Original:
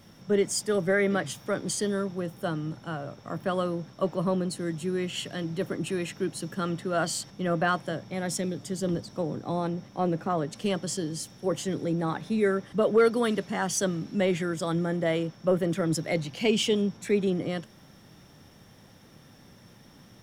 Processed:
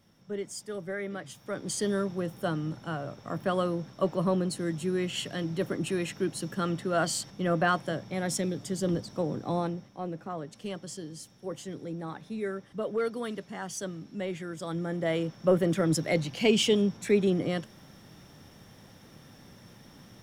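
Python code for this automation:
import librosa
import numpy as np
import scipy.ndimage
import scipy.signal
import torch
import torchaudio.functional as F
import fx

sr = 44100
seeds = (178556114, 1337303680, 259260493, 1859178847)

y = fx.gain(x, sr, db=fx.line((1.22, -11.0), (1.9, 0.0), (9.59, 0.0), (9.99, -9.0), (14.41, -9.0), (15.43, 1.0)))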